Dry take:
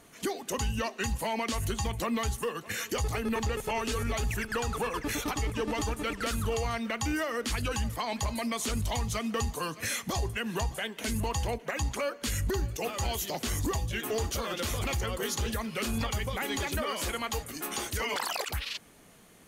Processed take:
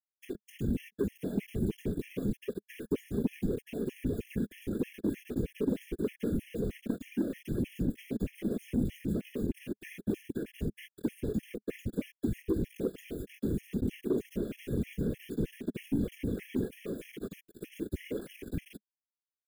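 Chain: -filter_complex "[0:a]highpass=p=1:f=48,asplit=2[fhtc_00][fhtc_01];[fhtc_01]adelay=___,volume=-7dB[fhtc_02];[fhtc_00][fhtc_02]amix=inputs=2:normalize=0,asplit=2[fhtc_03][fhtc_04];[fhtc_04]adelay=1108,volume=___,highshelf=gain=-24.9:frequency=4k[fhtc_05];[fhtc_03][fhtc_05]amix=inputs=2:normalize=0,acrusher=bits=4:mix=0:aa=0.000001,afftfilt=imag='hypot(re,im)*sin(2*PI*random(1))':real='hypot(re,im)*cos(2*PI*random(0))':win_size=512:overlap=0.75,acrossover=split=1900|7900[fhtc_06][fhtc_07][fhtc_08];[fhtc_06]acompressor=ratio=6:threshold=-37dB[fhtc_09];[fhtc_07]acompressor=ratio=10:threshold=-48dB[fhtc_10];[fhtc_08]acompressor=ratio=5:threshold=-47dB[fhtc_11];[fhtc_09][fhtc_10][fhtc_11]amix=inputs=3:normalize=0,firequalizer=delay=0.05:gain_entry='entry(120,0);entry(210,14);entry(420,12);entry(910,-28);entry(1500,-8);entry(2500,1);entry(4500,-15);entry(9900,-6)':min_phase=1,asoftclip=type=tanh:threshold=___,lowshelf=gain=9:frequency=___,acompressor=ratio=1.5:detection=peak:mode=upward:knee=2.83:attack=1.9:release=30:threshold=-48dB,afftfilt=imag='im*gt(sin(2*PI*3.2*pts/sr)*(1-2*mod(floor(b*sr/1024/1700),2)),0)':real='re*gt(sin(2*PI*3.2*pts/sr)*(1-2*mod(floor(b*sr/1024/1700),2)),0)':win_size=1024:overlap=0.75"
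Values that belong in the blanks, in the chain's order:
19, -20dB, -21.5dB, 220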